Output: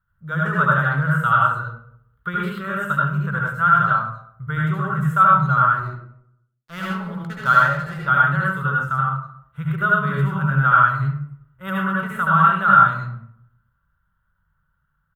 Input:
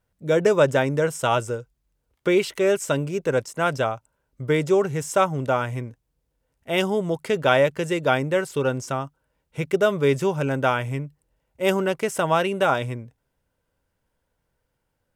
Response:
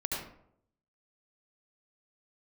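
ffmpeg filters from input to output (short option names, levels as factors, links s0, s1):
-filter_complex "[0:a]firequalizer=gain_entry='entry(190,0);entry(270,-23);entry(540,-18);entry(790,-13);entry(1300,12);entry(2300,-16);entry(3300,-8);entry(5300,-26);entry(14000,-4)':delay=0.05:min_phase=1,asettb=1/sr,asplit=3[s0][s1][s2];[s0]atrim=end=5.734[s3];[s1]atrim=start=5.73:end=8.03,asetpts=PTS-STARTPTS,afade=t=in:d=0.004:c=qsin,afade=t=out:st=2.296:d=0.004:c=qsin,aeval=exprs='sgn(val(0))*max(abs(val(0))-0.0133,0)':c=same[s4];[s2]atrim=start=8.026[s5];[s3][s4]acrossfade=d=0.004:c1=hsin:c2=qsin[s6];[s6][s5]acrossfade=d=0.004:c1=qsin:c2=hsin,asplit=2[s7][s8];[s8]adelay=230,highpass=300,lowpass=3400,asoftclip=type=hard:threshold=0.168,volume=0.0398[s9];[s7][s9]amix=inputs=2:normalize=0[s10];[1:a]atrim=start_sample=2205[s11];[s10][s11]afir=irnorm=-1:irlink=0"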